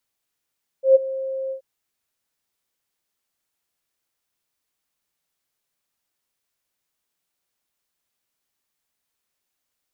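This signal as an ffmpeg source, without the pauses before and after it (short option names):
-f lavfi -i "aevalsrc='0.447*sin(2*PI*532*t)':d=0.779:s=44100,afade=t=in:d=0.122,afade=t=out:st=0.122:d=0.02:silence=0.133,afade=t=out:st=0.68:d=0.099"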